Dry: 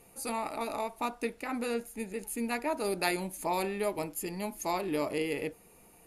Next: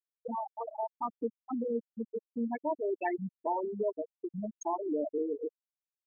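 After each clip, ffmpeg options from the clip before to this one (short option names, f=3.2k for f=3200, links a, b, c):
-filter_complex "[0:a]afftfilt=real='re*gte(hypot(re,im),0.126)':imag='im*gte(hypot(re,im),0.126)':win_size=1024:overlap=0.75,asplit=2[a][b];[b]acompressor=threshold=-42dB:ratio=6,volume=1.5dB[c];[a][c]amix=inputs=2:normalize=0,volume=-1.5dB"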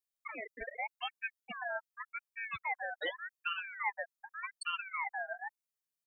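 -af "highshelf=f=3.1k:g=10,aecho=1:1:1.6:0.84,aeval=exprs='val(0)*sin(2*PI*1600*n/s+1600*0.3/0.85*sin(2*PI*0.85*n/s))':c=same,volume=-4.5dB"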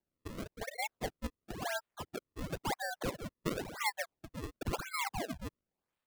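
-af "acrusher=samples=33:mix=1:aa=0.000001:lfo=1:lforange=52.8:lforate=0.96,volume=1dB"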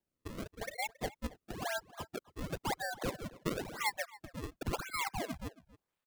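-filter_complex "[0:a]asplit=2[a][b];[b]adelay=274.1,volume=-19dB,highshelf=f=4k:g=-6.17[c];[a][c]amix=inputs=2:normalize=0"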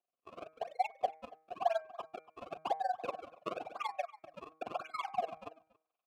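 -filter_complex "[0:a]asplit=3[a][b][c];[a]bandpass=f=730:t=q:w=8,volume=0dB[d];[b]bandpass=f=1.09k:t=q:w=8,volume=-6dB[e];[c]bandpass=f=2.44k:t=q:w=8,volume=-9dB[f];[d][e][f]amix=inputs=3:normalize=0,tremolo=f=21:d=0.974,bandreject=f=158.1:t=h:w=4,bandreject=f=316.2:t=h:w=4,bandreject=f=474.3:t=h:w=4,bandreject=f=632.4:t=h:w=4,bandreject=f=790.5:t=h:w=4,bandreject=f=948.6:t=h:w=4,bandreject=f=1.1067k:t=h:w=4,bandreject=f=1.2648k:t=h:w=4,bandreject=f=1.4229k:t=h:w=4,bandreject=f=1.581k:t=h:w=4,bandreject=f=1.7391k:t=h:w=4,bandreject=f=1.8972k:t=h:w=4,bandreject=f=2.0553k:t=h:w=4,bandreject=f=2.2134k:t=h:w=4,bandreject=f=2.3715k:t=h:w=4,volume=14.5dB"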